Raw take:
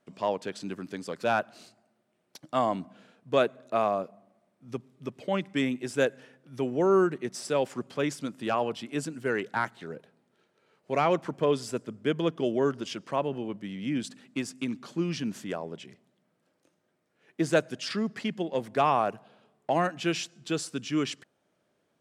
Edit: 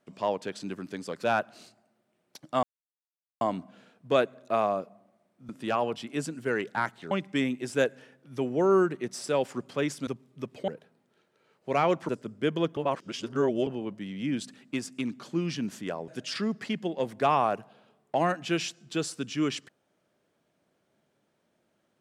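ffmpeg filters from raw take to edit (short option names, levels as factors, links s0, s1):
-filter_complex "[0:a]asplit=10[s0][s1][s2][s3][s4][s5][s6][s7][s8][s9];[s0]atrim=end=2.63,asetpts=PTS-STARTPTS,afade=t=out:st=2.626:d=0.004:c=hsin,apad=pad_dur=0.78[s10];[s1]atrim=start=2.63:end=4.712,asetpts=PTS-STARTPTS,afade=t=in:d=0.004:c=hsin[s11];[s2]atrim=start=8.278:end=9.902[s12];[s3]atrim=start=5.318:end=8.282[s13];[s4]atrim=start=4.708:end=5.322[s14];[s5]atrim=start=9.898:end=11.312[s15];[s6]atrim=start=11.718:end=12.402[s16];[s7]atrim=start=12.398:end=13.302,asetpts=PTS-STARTPTS,areverse[s17];[s8]atrim=start=13.298:end=15.712[s18];[s9]atrim=start=17.628[s19];[s10][s11]concat=n=2:v=0:a=1[s20];[s20][s12]acrossfade=d=0.004:c1=hsin:c2=hsin[s21];[s21][s13]acrossfade=d=0.004:c1=hsin:c2=hsin[s22];[s22][s14]acrossfade=d=0.004:c1=hsin:c2=hsin[s23];[s23][s15]acrossfade=d=0.004:c1=hsin:c2=hsin[s24];[s24][s16]acrossfade=d=0.004:c1=hsin:c2=hsin[s25];[s25][s17]acrossfade=d=0.004:c1=hsin:c2=hsin[s26];[s26][s18]acrossfade=d=0.004:c1=hsin:c2=hsin[s27];[s27][s19]acrossfade=d=0.004:c1=hsin:c2=hsin"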